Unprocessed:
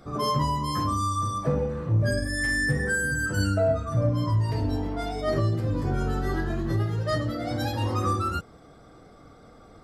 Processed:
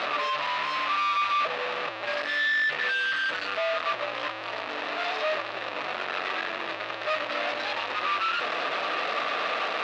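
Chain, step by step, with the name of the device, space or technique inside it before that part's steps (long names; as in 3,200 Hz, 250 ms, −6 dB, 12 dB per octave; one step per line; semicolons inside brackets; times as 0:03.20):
home computer beeper (sign of each sample alone; loudspeaker in its box 550–4,300 Hz, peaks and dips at 610 Hz +7 dB, 1,200 Hz +7 dB, 1,800 Hz +6 dB, 2,600 Hz +9 dB, 3,800 Hz +5 dB)
level −4 dB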